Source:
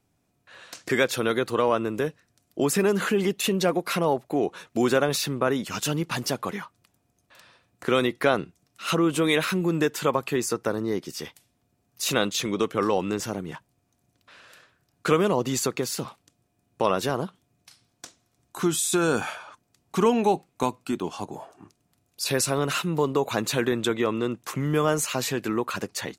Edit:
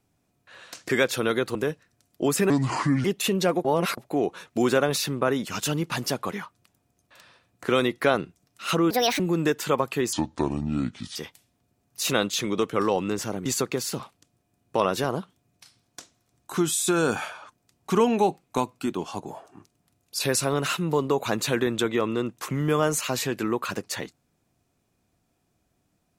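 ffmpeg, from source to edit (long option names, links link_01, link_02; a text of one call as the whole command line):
ffmpeg -i in.wav -filter_complex "[0:a]asplit=11[link_01][link_02][link_03][link_04][link_05][link_06][link_07][link_08][link_09][link_10][link_11];[link_01]atrim=end=1.552[link_12];[link_02]atrim=start=1.918:end=2.874[link_13];[link_03]atrim=start=2.87:end=3.24,asetpts=PTS-STARTPTS,asetrate=29988,aresample=44100[link_14];[link_04]atrim=start=3.236:end=3.842[link_15];[link_05]atrim=start=3.838:end=4.172,asetpts=PTS-STARTPTS,areverse[link_16];[link_06]atrim=start=4.168:end=9.104[link_17];[link_07]atrim=start=9.1:end=9.55,asetpts=PTS-STARTPTS,asetrate=67914,aresample=44100,atrim=end_sample=12886,asetpts=PTS-STARTPTS[link_18];[link_08]atrim=start=9.546:end=10.484[link_19];[link_09]atrim=start=10.48:end=11.17,asetpts=PTS-STARTPTS,asetrate=29547,aresample=44100,atrim=end_sample=45416,asetpts=PTS-STARTPTS[link_20];[link_10]atrim=start=11.166:end=13.472[link_21];[link_11]atrim=start=15.508[link_22];[link_12][link_13]acrossfade=duration=0.004:curve1=hsin:curve2=hsin[link_23];[link_23][link_14]acrossfade=duration=0.004:curve1=hsin:curve2=hsin[link_24];[link_24][link_15]acrossfade=duration=0.004:curve1=hsin:curve2=hsin[link_25];[link_25][link_16]acrossfade=duration=0.004:curve1=hsin:curve2=hsin[link_26];[link_26][link_17]acrossfade=duration=0.004:curve1=hsin:curve2=hsin[link_27];[link_27][link_18]acrossfade=duration=0.004:curve1=hsin:curve2=hsin[link_28];[link_28][link_19]acrossfade=duration=0.004:curve1=hsin:curve2=hsin[link_29];[link_29][link_20]acrossfade=duration=0.004:curve1=hsin:curve2=hsin[link_30];[link_30][link_21]acrossfade=duration=0.004:curve1=hsin:curve2=hsin[link_31];[link_31][link_22]acrossfade=duration=0.004:curve1=hsin:curve2=hsin" out.wav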